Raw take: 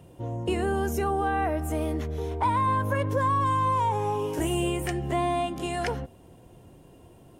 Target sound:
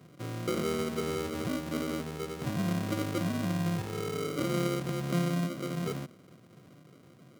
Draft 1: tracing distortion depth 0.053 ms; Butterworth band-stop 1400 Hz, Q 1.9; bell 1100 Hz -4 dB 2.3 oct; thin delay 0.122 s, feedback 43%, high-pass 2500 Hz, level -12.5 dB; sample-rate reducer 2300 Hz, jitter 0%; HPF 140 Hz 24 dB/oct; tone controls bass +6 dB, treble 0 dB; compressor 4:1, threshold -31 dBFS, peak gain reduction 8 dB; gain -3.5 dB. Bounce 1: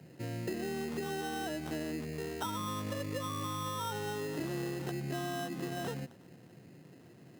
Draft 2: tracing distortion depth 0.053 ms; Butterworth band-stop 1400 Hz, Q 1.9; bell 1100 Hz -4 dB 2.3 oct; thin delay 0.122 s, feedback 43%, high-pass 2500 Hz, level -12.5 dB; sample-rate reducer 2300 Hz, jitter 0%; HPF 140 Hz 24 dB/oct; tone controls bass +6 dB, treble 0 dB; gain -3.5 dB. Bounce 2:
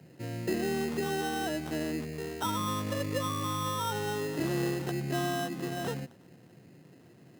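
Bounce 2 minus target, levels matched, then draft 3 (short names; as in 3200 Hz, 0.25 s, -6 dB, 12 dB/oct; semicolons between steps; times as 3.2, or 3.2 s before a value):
sample-rate reducer: distortion -8 dB
tracing distortion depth 0.053 ms; Butterworth band-stop 1400 Hz, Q 1.9; bell 1100 Hz -4 dB 2.3 oct; thin delay 0.122 s, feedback 43%, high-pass 2500 Hz, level -12.5 dB; sample-rate reducer 870 Hz, jitter 0%; HPF 140 Hz 24 dB/oct; tone controls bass +6 dB, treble 0 dB; gain -3.5 dB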